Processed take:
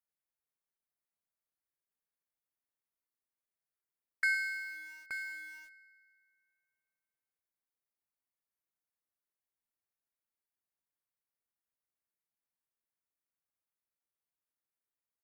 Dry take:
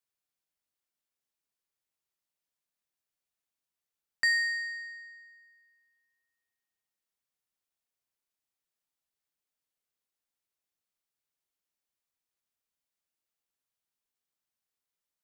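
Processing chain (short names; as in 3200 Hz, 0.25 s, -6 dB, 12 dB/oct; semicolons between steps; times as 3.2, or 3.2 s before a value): tapped delay 0.111/0.875 s -15.5/-9 dB; ring modulator 310 Hz; band shelf 4600 Hz -11 dB; in parallel at -8 dB: requantised 8-bit, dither none; on the sum: gain -3 dB; AAC 192 kbps 44100 Hz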